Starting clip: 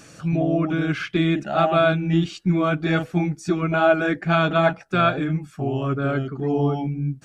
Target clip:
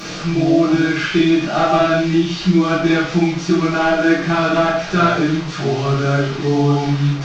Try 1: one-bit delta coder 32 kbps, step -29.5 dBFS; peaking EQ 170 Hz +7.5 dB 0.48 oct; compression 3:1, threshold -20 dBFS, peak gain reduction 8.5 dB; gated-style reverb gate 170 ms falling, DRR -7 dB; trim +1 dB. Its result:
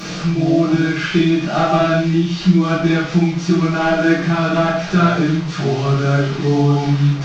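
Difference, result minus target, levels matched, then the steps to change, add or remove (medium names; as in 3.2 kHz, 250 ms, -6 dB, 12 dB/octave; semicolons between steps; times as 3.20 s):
125 Hz band +3.0 dB
remove: peaking EQ 170 Hz +7.5 dB 0.48 oct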